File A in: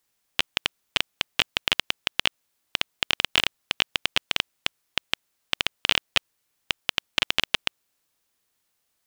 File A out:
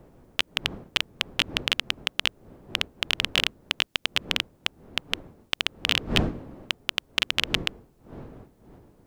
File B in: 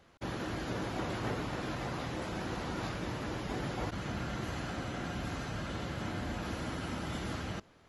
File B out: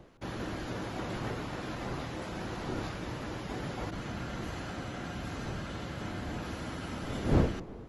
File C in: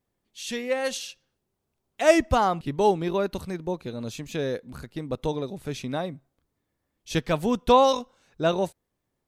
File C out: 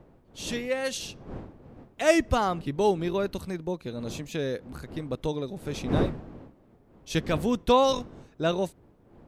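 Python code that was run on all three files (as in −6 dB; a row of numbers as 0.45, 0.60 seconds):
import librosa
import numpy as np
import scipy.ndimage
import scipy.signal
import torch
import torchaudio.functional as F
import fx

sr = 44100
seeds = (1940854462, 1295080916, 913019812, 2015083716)

y = fx.dmg_wind(x, sr, seeds[0], corner_hz=360.0, level_db=-38.0)
y = fx.dynamic_eq(y, sr, hz=820.0, q=1.4, threshold_db=-38.0, ratio=4.0, max_db=-4)
y = F.gain(torch.from_numpy(y), -1.0).numpy()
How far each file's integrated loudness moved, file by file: −1.0, +1.0, −2.5 LU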